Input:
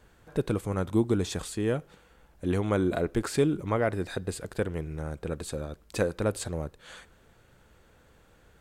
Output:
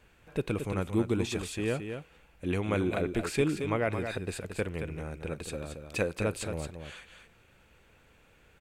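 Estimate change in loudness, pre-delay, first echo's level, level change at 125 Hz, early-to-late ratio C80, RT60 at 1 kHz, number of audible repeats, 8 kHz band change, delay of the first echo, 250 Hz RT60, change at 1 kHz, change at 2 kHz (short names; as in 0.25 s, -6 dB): -2.5 dB, none, -7.5 dB, -2.5 dB, none, none, 1, -2.5 dB, 0.224 s, none, -2.5 dB, +1.5 dB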